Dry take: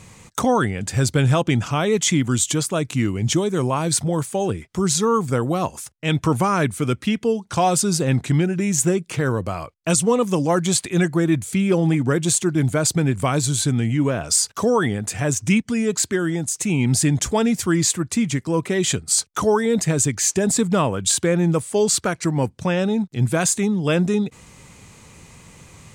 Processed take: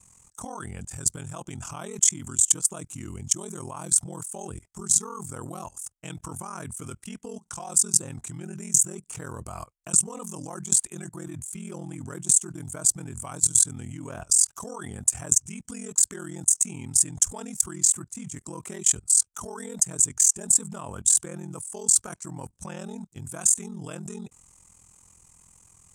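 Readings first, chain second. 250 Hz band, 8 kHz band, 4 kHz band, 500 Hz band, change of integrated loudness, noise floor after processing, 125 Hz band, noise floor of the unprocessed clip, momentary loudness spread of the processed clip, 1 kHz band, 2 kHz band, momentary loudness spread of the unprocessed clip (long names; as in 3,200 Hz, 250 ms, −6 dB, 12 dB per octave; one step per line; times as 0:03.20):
−18.5 dB, +2.0 dB, −11.5 dB, −20.0 dB, −2.0 dB, −62 dBFS, −17.5 dB, −51 dBFS, 18 LU, −16.0 dB, −18.5 dB, 5 LU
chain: octave-band graphic EQ 125/250/500/2,000/4,000/8,000 Hz −8/−8/−10/−10/−12/+11 dB
output level in coarse steps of 19 dB
ring modulation 21 Hz
level +4 dB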